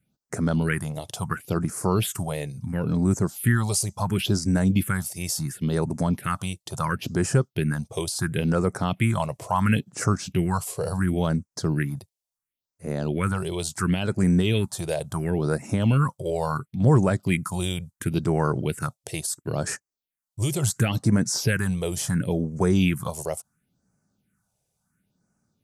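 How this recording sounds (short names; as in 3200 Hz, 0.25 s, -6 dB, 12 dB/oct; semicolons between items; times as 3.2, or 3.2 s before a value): phasing stages 4, 0.72 Hz, lowest notch 230–3300 Hz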